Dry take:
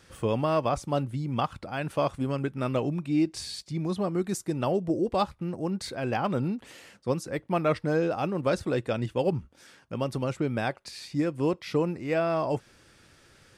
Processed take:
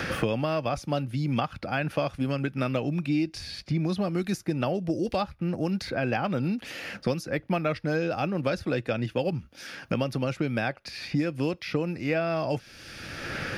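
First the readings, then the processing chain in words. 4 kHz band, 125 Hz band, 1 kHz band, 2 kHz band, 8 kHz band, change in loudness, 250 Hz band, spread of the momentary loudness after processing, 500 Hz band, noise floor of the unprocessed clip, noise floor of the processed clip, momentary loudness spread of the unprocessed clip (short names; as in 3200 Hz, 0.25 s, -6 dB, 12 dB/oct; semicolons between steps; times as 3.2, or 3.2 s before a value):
+2.5 dB, +1.5 dB, -1.5 dB, +5.0 dB, -3.0 dB, 0.0 dB, +1.0 dB, 6 LU, -1.0 dB, -59 dBFS, -53 dBFS, 6 LU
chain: thirty-one-band EQ 400 Hz -5 dB, 1000 Hz -7 dB, 1600 Hz +3 dB, 2500 Hz +5 dB, 5000 Hz +4 dB, 8000 Hz -12 dB; three-band squash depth 100%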